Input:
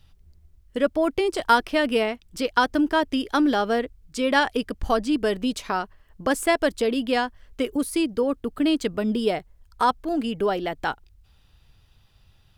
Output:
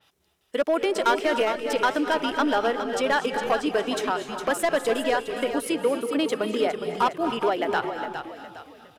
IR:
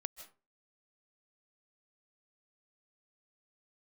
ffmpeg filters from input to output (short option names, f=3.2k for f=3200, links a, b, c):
-filter_complex "[0:a]highpass=400,bandreject=f=4.6k:w=13,asplit=2[a][b];[b]acompressor=threshold=-32dB:ratio=10,volume=1dB[c];[a][c]amix=inputs=2:normalize=0,asoftclip=type=hard:threshold=-15dB,atempo=1.4,asplit=5[d][e][f][g][h];[e]adelay=410,afreqshift=-40,volume=-9dB[i];[f]adelay=820,afreqshift=-80,volume=-17.4dB[j];[g]adelay=1230,afreqshift=-120,volume=-25.8dB[k];[h]adelay=1640,afreqshift=-160,volume=-34.2dB[l];[d][i][j][k][l]amix=inputs=5:normalize=0[m];[1:a]atrim=start_sample=2205,asetrate=29106,aresample=44100[n];[m][n]afir=irnorm=-1:irlink=0,adynamicequalizer=threshold=0.00891:dfrequency=3300:dqfactor=0.7:tfrequency=3300:tqfactor=0.7:attack=5:release=100:ratio=0.375:range=2.5:mode=cutabove:tftype=highshelf"